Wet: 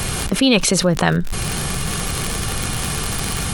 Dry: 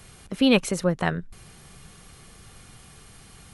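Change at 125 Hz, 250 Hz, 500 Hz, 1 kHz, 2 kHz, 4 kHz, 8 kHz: +11.5, +5.5, +5.5, +10.0, +9.0, +11.5, +18.5 decibels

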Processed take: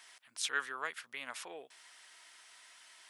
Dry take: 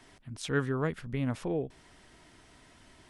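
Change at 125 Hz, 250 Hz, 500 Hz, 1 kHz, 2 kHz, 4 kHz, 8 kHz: −39.0, −25.5, −16.0, −1.5, +1.5, +4.0, +5.5 decibels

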